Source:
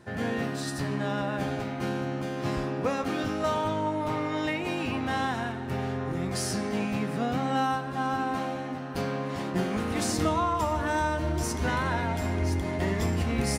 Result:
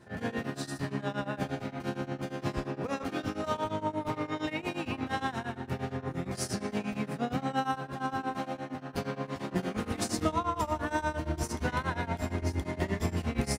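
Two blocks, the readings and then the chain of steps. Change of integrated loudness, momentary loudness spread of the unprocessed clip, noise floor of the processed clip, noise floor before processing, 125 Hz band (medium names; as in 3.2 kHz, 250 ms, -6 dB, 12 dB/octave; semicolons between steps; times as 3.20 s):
-4.5 dB, 5 LU, -46 dBFS, -34 dBFS, -4.5 dB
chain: tremolo triangle 8.6 Hz, depth 95%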